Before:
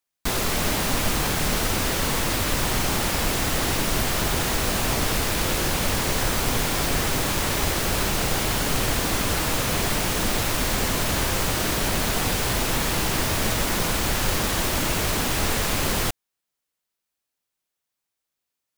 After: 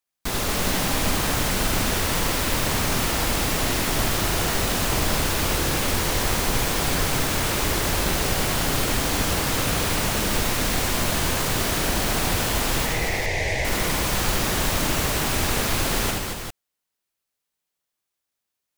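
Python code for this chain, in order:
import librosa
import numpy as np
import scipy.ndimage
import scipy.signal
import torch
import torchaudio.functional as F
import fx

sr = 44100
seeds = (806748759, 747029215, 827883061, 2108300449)

y = fx.curve_eq(x, sr, hz=(110.0, 240.0, 460.0, 810.0, 1300.0, 2000.0, 2900.0, 6200.0, 13000.0), db=(0, -14, 2, 1, -22, 10, -5, -5, -20), at=(12.86, 13.65))
y = fx.echo_multitap(y, sr, ms=(76, 228, 398), db=(-3.0, -5.0, -6.5))
y = F.gain(torch.from_numpy(y), -2.5).numpy()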